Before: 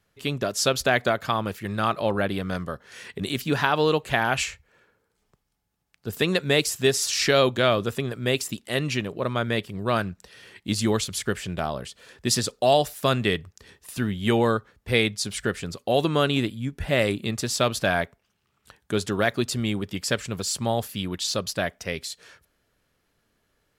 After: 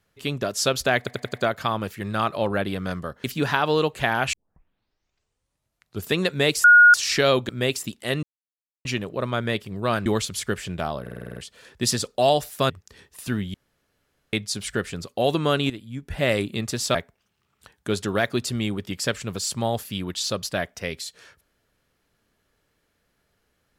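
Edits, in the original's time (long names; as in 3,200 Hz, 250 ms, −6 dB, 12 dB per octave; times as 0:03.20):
0:00.98: stutter 0.09 s, 5 plays
0:02.88–0:03.34: remove
0:04.43: tape start 1.78 s
0:06.74–0:07.04: beep over 1,440 Hz −8 dBFS
0:07.59–0:08.14: remove
0:08.88: splice in silence 0.62 s
0:10.09–0:10.85: remove
0:11.80: stutter 0.05 s, 8 plays
0:13.14–0:13.40: remove
0:14.24–0:15.03: fill with room tone
0:16.40–0:16.92: fade in, from −13 dB
0:17.65–0:17.99: remove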